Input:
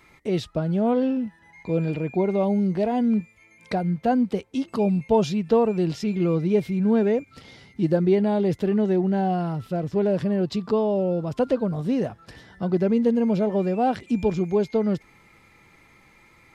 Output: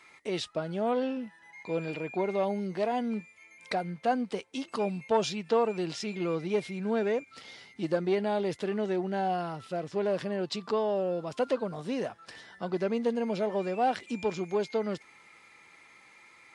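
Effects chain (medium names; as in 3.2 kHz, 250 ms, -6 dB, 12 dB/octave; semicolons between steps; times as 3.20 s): single-diode clipper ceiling -9.5 dBFS; high-pass 870 Hz 6 dB/octave; trim +1.5 dB; MP3 64 kbps 24 kHz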